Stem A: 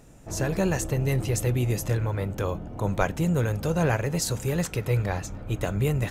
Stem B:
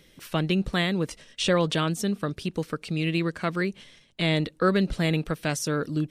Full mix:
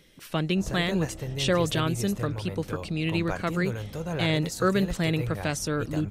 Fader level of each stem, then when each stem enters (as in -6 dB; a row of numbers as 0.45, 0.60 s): -8.0, -1.5 dB; 0.30, 0.00 s